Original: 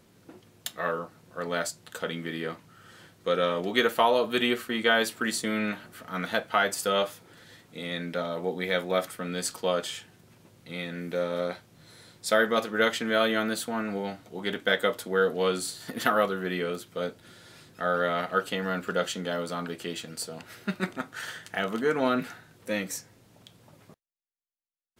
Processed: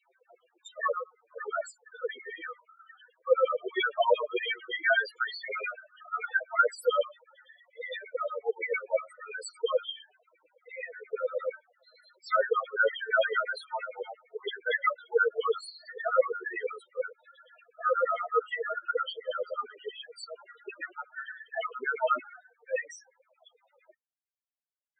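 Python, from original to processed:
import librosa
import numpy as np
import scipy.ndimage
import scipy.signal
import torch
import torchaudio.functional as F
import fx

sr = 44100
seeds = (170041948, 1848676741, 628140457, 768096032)

y = fx.dynamic_eq(x, sr, hz=670.0, q=2.2, threshold_db=-42.0, ratio=4.0, max_db=-3)
y = fx.filter_lfo_highpass(y, sr, shape='saw_down', hz=8.7, low_hz=430.0, high_hz=3100.0, q=3.0)
y = fx.spec_topn(y, sr, count=4)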